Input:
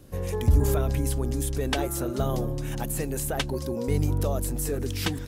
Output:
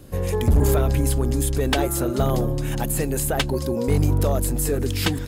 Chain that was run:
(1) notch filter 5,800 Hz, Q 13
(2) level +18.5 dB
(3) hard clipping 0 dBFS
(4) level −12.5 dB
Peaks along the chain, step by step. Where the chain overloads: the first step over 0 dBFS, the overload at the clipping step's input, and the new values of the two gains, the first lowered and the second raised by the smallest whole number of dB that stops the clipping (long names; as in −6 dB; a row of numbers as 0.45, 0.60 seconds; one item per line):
−12.0, +6.5, 0.0, −12.5 dBFS
step 2, 6.5 dB
step 2 +11.5 dB, step 4 −5.5 dB